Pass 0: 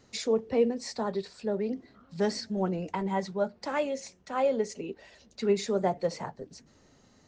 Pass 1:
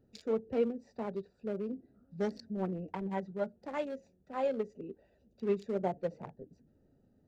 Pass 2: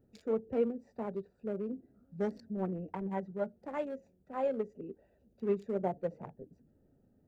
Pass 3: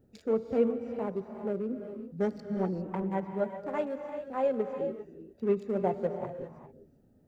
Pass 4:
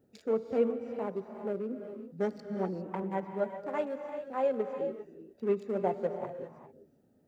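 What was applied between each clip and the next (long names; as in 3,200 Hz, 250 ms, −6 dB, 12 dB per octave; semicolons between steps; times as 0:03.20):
adaptive Wiener filter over 41 samples; level −5 dB
parametric band 4,600 Hz −10 dB 1.6 octaves
reverb whose tail is shaped and stops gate 430 ms rising, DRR 7 dB; level +4 dB
high-pass filter 250 Hz 6 dB per octave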